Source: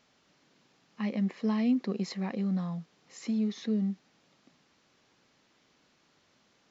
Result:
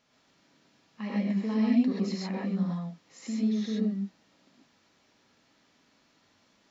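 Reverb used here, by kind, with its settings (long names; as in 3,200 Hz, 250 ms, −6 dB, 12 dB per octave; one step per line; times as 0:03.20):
reverb whose tail is shaped and stops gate 160 ms rising, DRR −4 dB
level −4 dB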